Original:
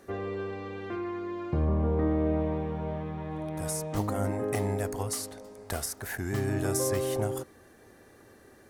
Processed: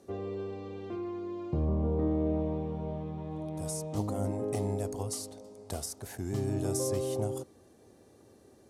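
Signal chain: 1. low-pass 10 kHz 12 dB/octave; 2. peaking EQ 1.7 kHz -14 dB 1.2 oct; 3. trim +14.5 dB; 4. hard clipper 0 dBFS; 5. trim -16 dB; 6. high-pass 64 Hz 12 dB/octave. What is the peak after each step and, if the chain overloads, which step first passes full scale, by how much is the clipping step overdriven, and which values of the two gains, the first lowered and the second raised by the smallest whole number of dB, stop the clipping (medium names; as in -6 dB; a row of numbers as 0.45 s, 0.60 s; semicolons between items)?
-16.0 dBFS, -16.5 dBFS, -2.0 dBFS, -2.0 dBFS, -18.0 dBFS, -19.0 dBFS; nothing clips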